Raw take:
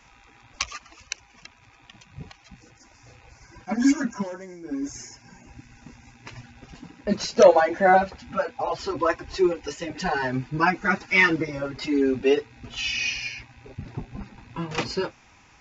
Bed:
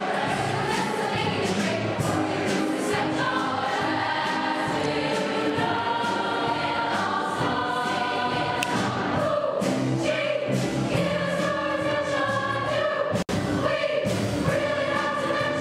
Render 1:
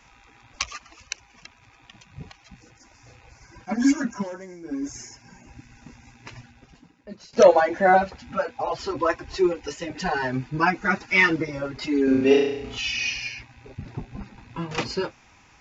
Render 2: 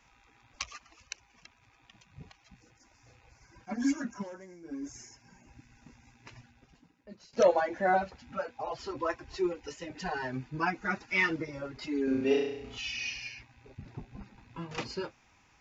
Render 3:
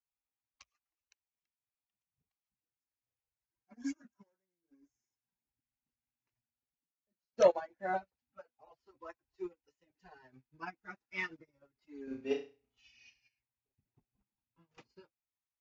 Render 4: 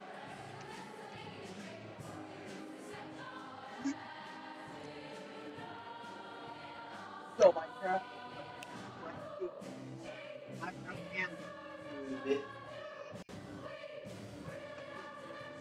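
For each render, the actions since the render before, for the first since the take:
6.3–7.33 fade out quadratic, to -18 dB; 12.04–12.78 flutter echo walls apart 5.8 m, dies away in 0.8 s
gain -9.5 dB
upward expander 2.5:1, over -46 dBFS
add bed -23 dB

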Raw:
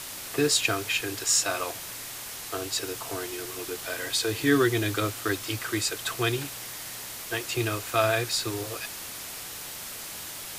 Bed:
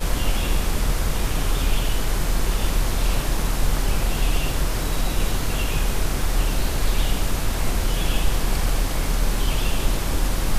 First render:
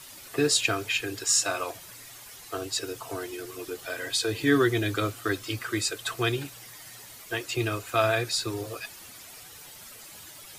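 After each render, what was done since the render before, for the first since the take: denoiser 11 dB, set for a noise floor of -39 dBFS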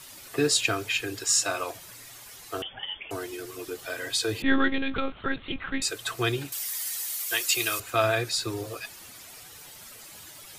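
2.62–3.11 inverted band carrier 3400 Hz; 4.42–5.82 monotone LPC vocoder at 8 kHz 270 Hz; 6.52–7.8 tilt +4.5 dB/oct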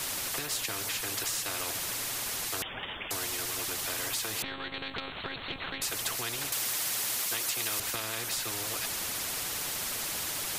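compressor, threshold -29 dBFS, peak gain reduction 12.5 dB; spectral compressor 4:1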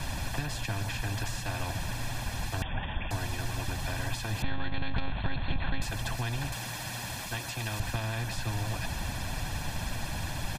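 RIAA curve playback; comb 1.2 ms, depth 64%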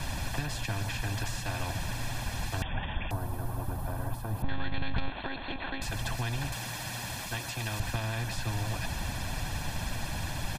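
3.11–4.49 band shelf 3700 Hz -16 dB 2.5 oct; 5.09–5.82 resonant low shelf 210 Hz -12 dB, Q 1.5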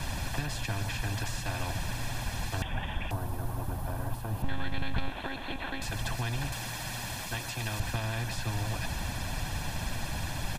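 add bed -28 dB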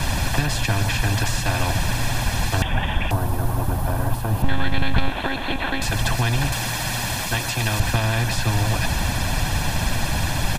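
gain +12 dB

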